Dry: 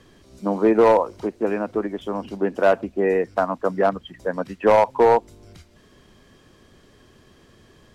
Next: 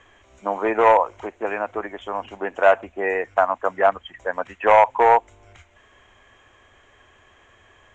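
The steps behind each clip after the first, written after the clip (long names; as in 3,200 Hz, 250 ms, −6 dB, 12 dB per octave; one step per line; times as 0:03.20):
drawn EQ curve 100 Hz 0 dB, 160 Hz −13 dB, 480 Hz 0 dB, 740 Hz +9 dB, 1,300 Hz +8 dB, 2,200 Hz +11 dB, 3,300 Hz +5 dB, 4,700 Hz −14 dB, 7,000 Hz +6 dB, 11,000 Hz −27 dB
level −4 dB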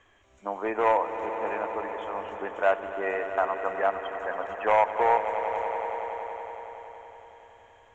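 echo that builds up and dies away 93 ms, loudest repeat 5, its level −14 dB
level −8 dB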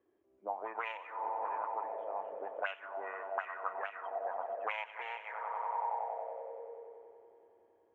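envelope filter 340–2,800 Hz, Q 4.3, up, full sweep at −20 dBFS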